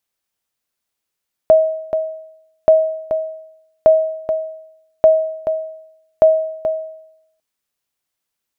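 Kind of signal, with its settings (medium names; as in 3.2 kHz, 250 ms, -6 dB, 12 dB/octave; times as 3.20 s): sonar ping 636 Hz, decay 0.80 s, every 1.18 s, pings 5, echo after 0.43 s, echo -8.5 dB -3 dBFS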